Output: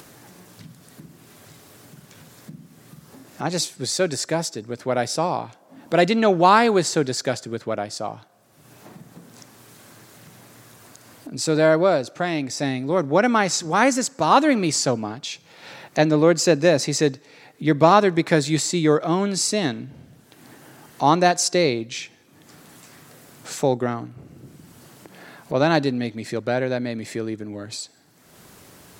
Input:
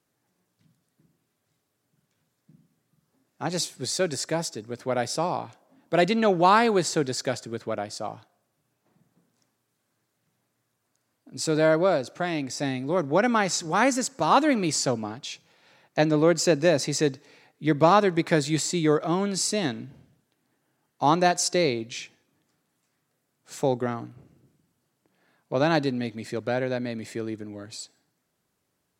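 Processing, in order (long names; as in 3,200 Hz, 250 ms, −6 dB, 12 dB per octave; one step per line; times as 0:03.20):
upward compression, threshold −31 dBFS
level +4 dB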